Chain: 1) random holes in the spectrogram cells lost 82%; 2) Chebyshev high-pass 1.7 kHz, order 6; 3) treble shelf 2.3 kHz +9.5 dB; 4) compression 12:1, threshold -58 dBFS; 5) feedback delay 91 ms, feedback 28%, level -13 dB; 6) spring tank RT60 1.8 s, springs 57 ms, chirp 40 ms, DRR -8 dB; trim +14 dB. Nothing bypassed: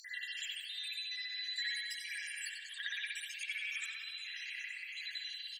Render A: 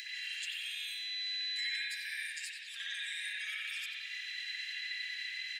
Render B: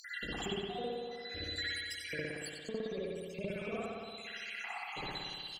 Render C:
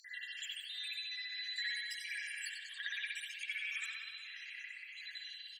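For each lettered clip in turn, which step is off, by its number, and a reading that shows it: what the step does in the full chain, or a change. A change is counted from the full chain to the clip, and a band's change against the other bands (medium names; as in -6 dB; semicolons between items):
1, crest factor change -3.5 dB; 2, crest factor change -2.5 dB; 3, momentary loudness spread change +3 LU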